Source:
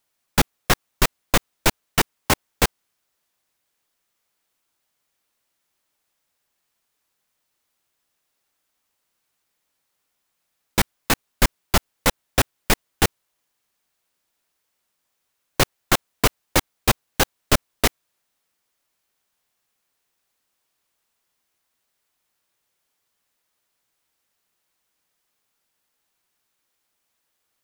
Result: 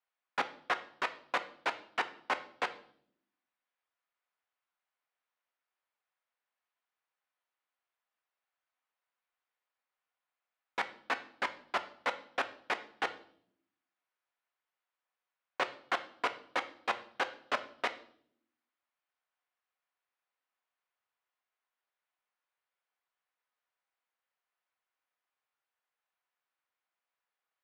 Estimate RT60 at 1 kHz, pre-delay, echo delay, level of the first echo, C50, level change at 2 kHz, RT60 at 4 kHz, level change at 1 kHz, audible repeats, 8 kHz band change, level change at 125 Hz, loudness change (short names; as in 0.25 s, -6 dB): 0.55 s, 3 ms, none, none, 14.5 dB, -10.0 dB, 0.55 s, -9.0 dB, none, -30.0 dB, -37.0 dB, -14.0 dB